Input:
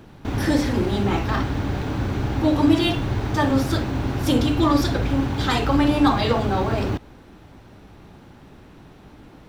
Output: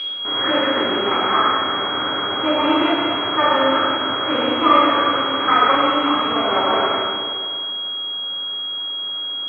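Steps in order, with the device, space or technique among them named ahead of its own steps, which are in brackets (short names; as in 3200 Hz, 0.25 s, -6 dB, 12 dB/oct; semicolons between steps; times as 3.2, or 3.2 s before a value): 5.75–6.36 band shelf 1100 Hz -8.5 dB 3 oct; toy sound module (decimation joined by straight lines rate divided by 6×; pulse-width modulation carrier 3300 Hz; speaker cabinet 680–4400 Hz, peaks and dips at 790 Hz -7 dB, 1300 Hz +8 dB, 2200 Hz +8 dB, 3700 Hz -7 dB); plate-style reverb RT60 2.1 s, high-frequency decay 0.9×, pre-delay 0 ms, DRR -6 dB; gain +5.5 dB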